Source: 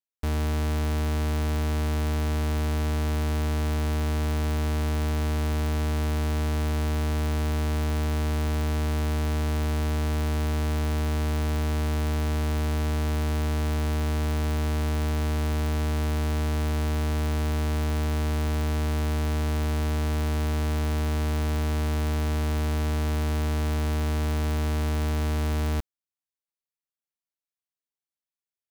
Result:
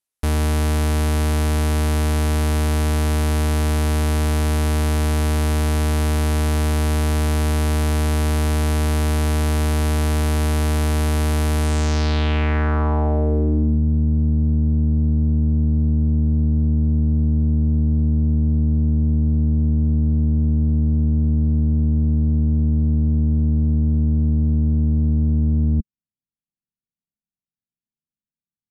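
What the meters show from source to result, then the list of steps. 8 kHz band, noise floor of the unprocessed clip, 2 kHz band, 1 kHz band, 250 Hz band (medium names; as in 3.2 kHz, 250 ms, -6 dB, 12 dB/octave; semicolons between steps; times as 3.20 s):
+8.0 dB, under -85 dBFS, +4.5 dB, +4.5 dB, +9.0 dB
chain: low-pass sweep 11 kHz -> 200 Hz, 11.60–13.80 s; trim +7 dB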